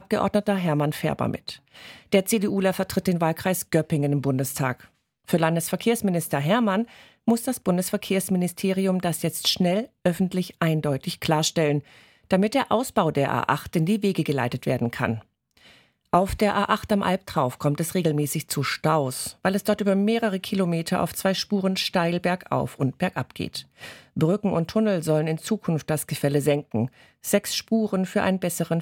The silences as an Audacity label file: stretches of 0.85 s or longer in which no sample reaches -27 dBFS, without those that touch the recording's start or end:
15.160000	16.130000	silence